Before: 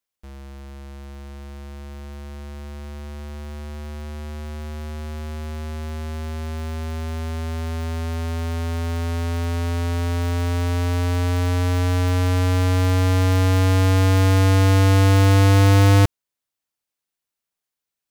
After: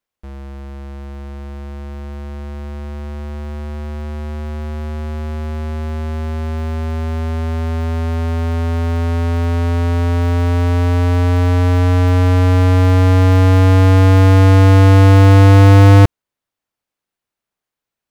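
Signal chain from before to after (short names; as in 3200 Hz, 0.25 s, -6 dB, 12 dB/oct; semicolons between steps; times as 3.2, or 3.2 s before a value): high shelf 3000 Hz -11 dB; gain +7.5 dB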